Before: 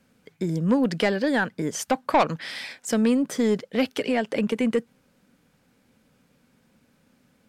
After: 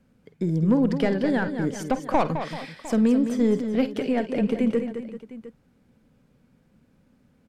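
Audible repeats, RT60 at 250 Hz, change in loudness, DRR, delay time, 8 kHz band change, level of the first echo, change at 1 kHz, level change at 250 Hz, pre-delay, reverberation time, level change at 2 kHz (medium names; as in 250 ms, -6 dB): 4, no reverb, +0.5 dB, no reverb, 50 ms, no reading, -13.5 dB, -2.5 dB, +2.0 dB, no reverb, no reverb, -5.0 dB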